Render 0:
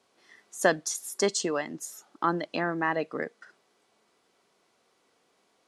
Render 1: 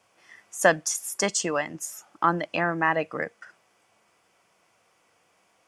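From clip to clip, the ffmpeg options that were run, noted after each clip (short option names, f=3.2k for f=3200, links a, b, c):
-af "equalizer=f=100:t=o:w=0.33:g=7,equalizer=f=250:t=o:w=0.33:g=-10,equalizer=f=400:t=o:w=0.33:g=-10,equalizer=f=2.5k:t=o:w=0.33:g=4,equalizer=f=4k:t=o:w=0.33:g=-11,volume=5dB"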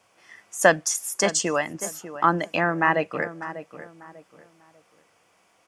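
-filter_complex "[0:a]asplit=2[a][b];[b]adelay=595,lowpass=f=1.5k:p=1,volume=-12dB,asplit=2[c][d];[d]adelay=595,lowpass=f=1.5k:p=1,volume=0.33,asplit=2[e][f];[f]adelay=595,lowpass=f=1.5k:p=1,volume=0.33[g];[a][c][e][g]amix=inputs=4:normalize=0,volume=2.5dB"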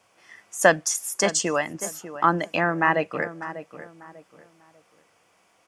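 -af anull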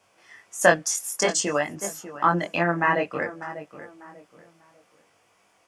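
-af "flanger=delay=20:depth=3.5:speed=0.56,volume=2.5dB"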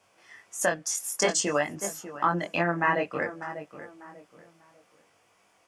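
-af "alimiter=limit=-11dB:level=0:latency=1:release=340,volume=-1.5dB"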